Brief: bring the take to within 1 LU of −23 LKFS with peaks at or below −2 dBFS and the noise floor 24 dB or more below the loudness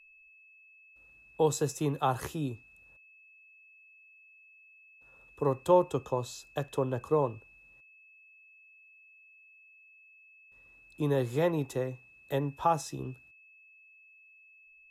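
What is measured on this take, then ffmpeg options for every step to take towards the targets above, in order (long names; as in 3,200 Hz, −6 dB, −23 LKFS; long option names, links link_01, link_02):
interfering tone 2,600 Hz; level of the tone −56 dBFS; integrated loudness −31.0 LKFS; sample peak −11.5 dBFS; target loudness −23.0 LKFS
→ -af "bandreject=frequency=2600:width=30"
-af "volume=8dB"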